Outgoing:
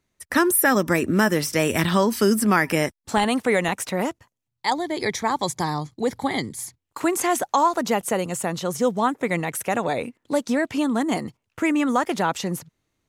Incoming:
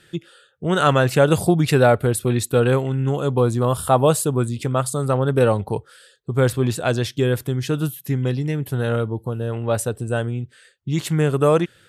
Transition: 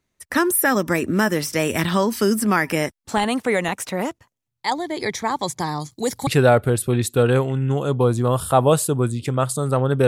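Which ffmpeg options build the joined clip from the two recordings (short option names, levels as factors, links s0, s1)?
-filter_complex "[0:a]asettb=1/sr,asplit=3[s0][s1][s2];[s0]atrim=end=5.804[s3];[s1]atrim=start=5.8:end=6.27,asetpts=PTS-STARTPTS,afade=t=in:d=0.004:c=qsin,afade=t=out:st=0.466:d=0.004:c=qsin,bass=f=250:g=0,treble=f=4000:g=14[s4];[s2]atrim=start=6.266[s5];[s3][s4]acrossfade=d=0.004:c1=hsin:c2=qsin[s6];[s6][s5]acrossfade=d=0.004:c1=qsin:c2=hsin,apad=whole_dur=10.07,atrim=end=10.07,atrim=end=6.272[s7];[1:a]atrim=start=1.638:end=5.44[s8];[s7][s8]acrossfade=d=0.004:c1=hsin:c2=hsin"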